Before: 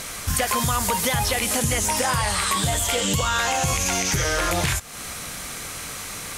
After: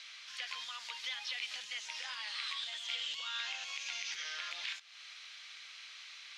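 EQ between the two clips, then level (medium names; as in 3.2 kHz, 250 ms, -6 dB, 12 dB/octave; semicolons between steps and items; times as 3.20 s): ladder band-pass 4.6 kHz, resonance 20%; distance through air 250 m; +6.5 dB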